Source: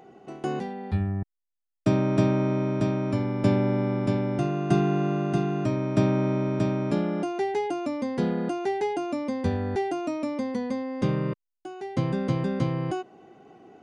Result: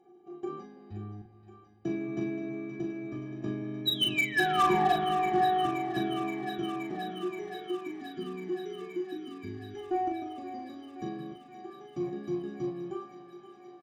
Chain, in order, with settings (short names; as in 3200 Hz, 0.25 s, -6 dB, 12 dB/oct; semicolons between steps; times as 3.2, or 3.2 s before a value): painted sound fall, 3.86–4.98, 610–3800 Hz -19 dBFS; metallic resonator 330 Hz, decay 0.22 s, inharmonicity 0.03; spectral delete 7.12–9.77, 410–1300 Hz; on a send at -11 dB: reverb RT60 4.4 s, pre-delay 40 ms; on the sum: pitch shift +1 st; downsampling 16000 Hz; added harmonics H 3 -18 dB, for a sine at -25 dBFS; bell 180 Hz +10 dB 2.6 oct; notch 4600 Hz, Q 15; doubler 39 ms -4.5 dB; thinning echo 0.524 s, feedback 81%, high-pass 410 Hz, level -11.5 dB; gain +2.5 dB